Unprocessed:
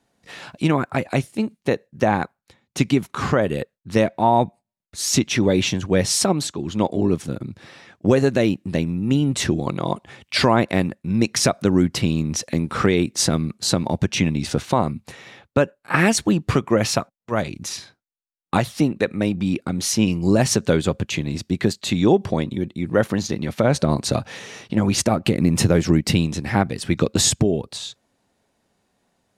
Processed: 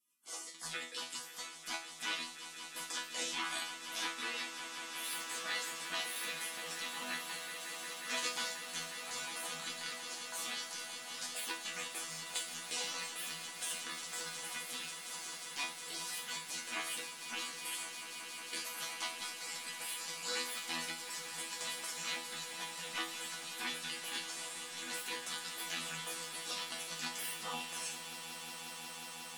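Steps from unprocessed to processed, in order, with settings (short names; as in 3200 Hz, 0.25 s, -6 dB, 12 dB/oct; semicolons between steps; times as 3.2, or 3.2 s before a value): LPF 7100 Hz 12 dB/oct; in parallel at -7 dB: sine folder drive 8 dB, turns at -4 dBFS; on the sum: HPF 380 Hz 24 dB/oct; tilt +3.5 dB/oct; limiter -7.5 dBFS, peak gain reduction 15 dB; compressor 2:1, threshold -27 dBFS, peak gain reduction 8.5 dB; spectral gate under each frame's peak -20 dB weak; resonator bank E3 fifth, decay 0.36 s; on a send: swelling echo 0.18 s, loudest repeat 8, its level -14 dB; on the sum: gain +13.5 dB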